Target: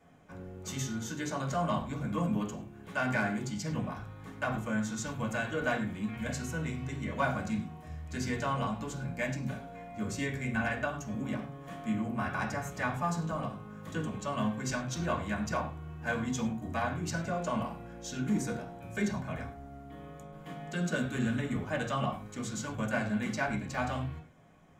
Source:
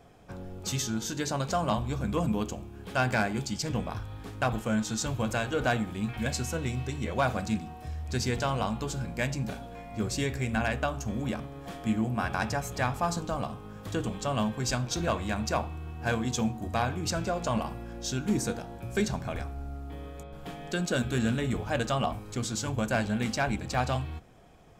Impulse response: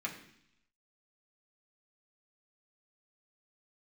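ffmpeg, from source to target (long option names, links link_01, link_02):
-filter_complex "[1:a]atrim=start_sample=2205,afade=type=out:start_time=0.15:duration=0.01,atrim=end_sample=7056,asetrate=37926,aresample=44100[link_01];[0:a][link_01]afir=irnorm=-1:irlink=0,volume=-6dB"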